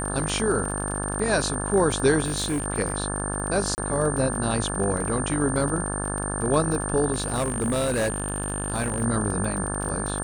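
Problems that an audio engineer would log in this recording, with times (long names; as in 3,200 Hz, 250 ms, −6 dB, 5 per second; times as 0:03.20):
mains buzz 50 Hz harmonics 35 −30 dBFS
surface crackle 37 per second −30 dBFS
whistle 8,900 Hz −31 dBFS
0:02.24–0:02.66: clipping −22 dBFS
0:03.75–0:03.78: drop-out 29 ms
0:07.12–0:09.03: clipping −20.5 dBFS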